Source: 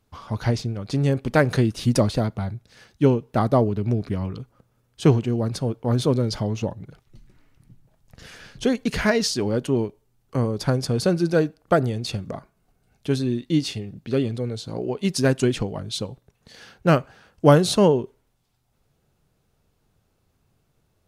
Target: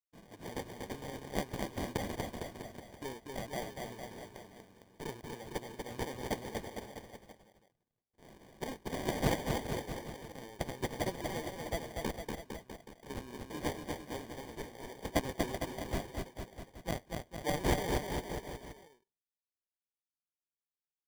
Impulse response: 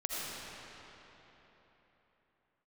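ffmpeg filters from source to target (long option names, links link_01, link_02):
-af "agate=range=-33dB:threshold=-40dB:ratio=3:detection=peak,aderivative,adynamicsmooth=sensitivity=6:basefreq=6600,acrusher=samples=33:mix=1:aa=0.000001,aecho=1:1:240|456|650.4|825.4|982.8:0.631|0.398|0.251|0.158|0.1,volume=1dB"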